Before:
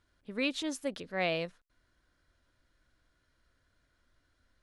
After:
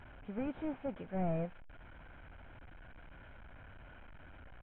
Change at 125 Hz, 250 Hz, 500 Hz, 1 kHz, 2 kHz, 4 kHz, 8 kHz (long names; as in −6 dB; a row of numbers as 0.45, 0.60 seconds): +5.5 dB, −1.5 dB, −5.0 dB, −3.5 dB, −14.0 dB, −23.5 dB, below −30 dB